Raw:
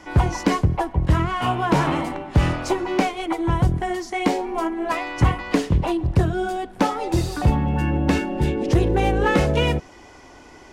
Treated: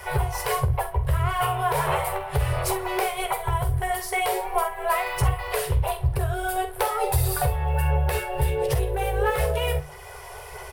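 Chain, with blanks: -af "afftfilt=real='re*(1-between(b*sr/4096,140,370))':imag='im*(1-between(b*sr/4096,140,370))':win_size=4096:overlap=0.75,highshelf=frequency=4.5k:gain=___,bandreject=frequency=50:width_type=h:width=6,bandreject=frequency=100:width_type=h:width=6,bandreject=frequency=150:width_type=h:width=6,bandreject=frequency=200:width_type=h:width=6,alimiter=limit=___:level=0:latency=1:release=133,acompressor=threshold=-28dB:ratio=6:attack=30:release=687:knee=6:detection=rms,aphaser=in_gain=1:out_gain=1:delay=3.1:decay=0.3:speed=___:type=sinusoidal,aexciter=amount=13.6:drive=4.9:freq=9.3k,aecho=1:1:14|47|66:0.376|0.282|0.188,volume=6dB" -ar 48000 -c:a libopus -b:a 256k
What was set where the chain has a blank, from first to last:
-4.5, -15.5dB, 1.5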